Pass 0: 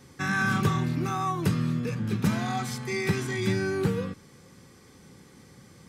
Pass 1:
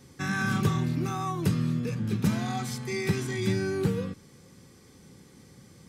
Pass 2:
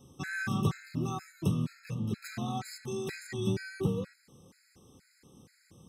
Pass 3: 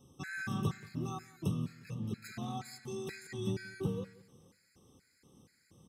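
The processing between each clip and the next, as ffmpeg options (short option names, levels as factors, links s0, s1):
-af "equalizer=f=1300:w=0.6:g=-4.5"
-af "afftfilt=real='re*gt(sin(2*PI*2.1*pts/sr)*(1-2*mod(floor(b*sr/1024/1300),2)),0)':imag='im*gt(sin(2*PI*2.1*pts/sr)*(1-2*mod(floor(b*sr/1024/1300),2)),0)':win_size=1024:overlap=0.75,volume=0.708"
-af "aecho=1:1:178|356|534:0.0891|0.033|0.0122,volume=0.562"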